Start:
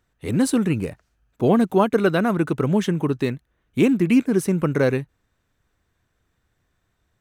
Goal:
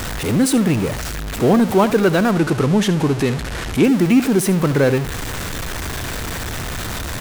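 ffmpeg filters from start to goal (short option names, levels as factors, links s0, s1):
-filter_complex "[0:a]aeval=exprs='val(0)+0.5*0.0891*sgn(val(0))':c=same,asettb=1/sr,asplit=3[s0][s1][s2];[s0]atrim=end=2.314[s3];[s1]atrim=start=2.31:end=3.84,asetpts=PTS-STARTPTS,afade=t=in:d=0.004:c=qsin,afade=t=out:st=1.526:d=0.004:c=qsin,lowpass=11000[s4];[s2]atrim=start=3.836[s5];[s3][s4]acrossfade=d=0.004:c1=hsin:c2=qsin[s6];[s6][s5]acrossfade=d=0.004:c1=qsin:c2=hsin,aecho=1:1:72:0.178,volume=1.19"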